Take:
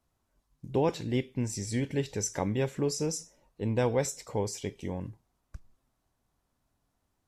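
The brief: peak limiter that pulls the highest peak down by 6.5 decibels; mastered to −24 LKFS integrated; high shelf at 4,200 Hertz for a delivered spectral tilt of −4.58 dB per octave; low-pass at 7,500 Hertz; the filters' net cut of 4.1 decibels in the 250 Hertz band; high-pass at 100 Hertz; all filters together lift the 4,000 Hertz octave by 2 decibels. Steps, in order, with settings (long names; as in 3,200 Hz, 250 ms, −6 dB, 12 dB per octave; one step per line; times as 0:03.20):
high-pass filter 100 Hz
low-pass filter 7,500 Hz
parametric band 250 Hz −5 dB
parametric band 4,000 Hz +6.5 dB
high-shelf EQ 4,200 Hz −4 dB
level +11.5 dB
brickwall limiter −11 dBFS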